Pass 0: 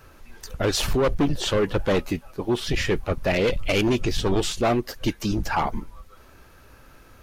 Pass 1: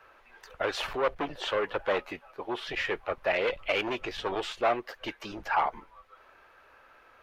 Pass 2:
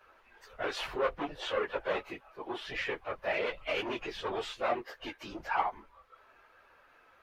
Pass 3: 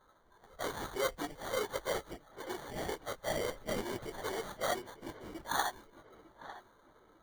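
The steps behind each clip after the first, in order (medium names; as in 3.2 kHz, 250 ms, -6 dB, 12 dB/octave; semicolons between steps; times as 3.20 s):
three-band isolator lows -22 dB, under 480 Hz, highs -19 dB, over 3.2 kHz; trim -1 dB
phase randomisation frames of 50 ms; trim -4 dB
sample-rate reducer 2.6 kHz, jitter 0%; feedback echo behind a low-pass 901 ms, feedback 45%, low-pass 3.4 kHz, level -15 dB; tape noise reduction on one side only decoder only; trim -3 dB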